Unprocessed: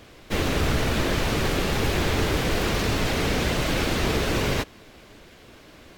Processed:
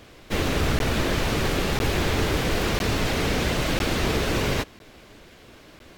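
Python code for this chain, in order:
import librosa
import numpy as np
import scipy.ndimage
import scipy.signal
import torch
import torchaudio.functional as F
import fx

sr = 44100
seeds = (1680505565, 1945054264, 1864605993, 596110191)

y = fx.buffer_crackle(x, sr, first_s=0.79, period_s=1.0, block=512, kind='zero')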